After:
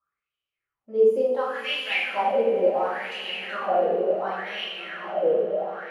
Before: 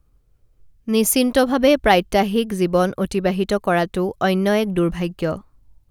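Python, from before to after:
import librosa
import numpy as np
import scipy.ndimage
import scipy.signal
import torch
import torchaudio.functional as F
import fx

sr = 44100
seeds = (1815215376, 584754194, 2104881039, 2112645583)

y = fx.echo_swell(x, sr, ms=96, loudest=8, wet_db=-16.5)
y = fx.wah_lfo(y, sr, hz=0.7, low_hz=450.0, high_hz=3000.0, q=12.0)
y = fx.rev_double_slope(y, sr, seeds[0], early_s=0.76, late_s=3.0, knee_db=-18, drr_db=-8.0)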